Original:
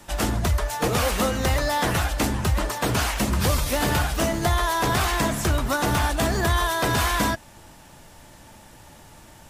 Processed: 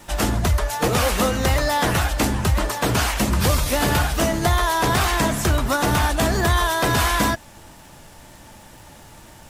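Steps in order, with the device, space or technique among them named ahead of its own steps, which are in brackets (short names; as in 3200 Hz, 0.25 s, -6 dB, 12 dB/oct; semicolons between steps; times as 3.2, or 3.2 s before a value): vinyl LP (wow and flutter 23 cents; crackle 96/s -42 dBFS; pink noise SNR 42 dB); gain +3 dB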